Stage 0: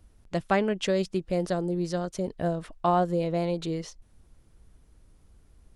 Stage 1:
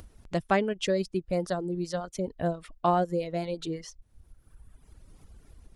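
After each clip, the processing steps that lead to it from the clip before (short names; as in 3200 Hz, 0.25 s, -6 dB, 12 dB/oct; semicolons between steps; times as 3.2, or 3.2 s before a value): reverb removal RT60 1.5 s; upward compressor, threshold -41 dBFS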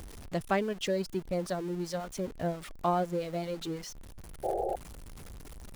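zero-crossing step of -37.5 dBFS; painted sound noise, 4.43–4.76, 340–850 Hz -27 dBFS; gain -4.5 dB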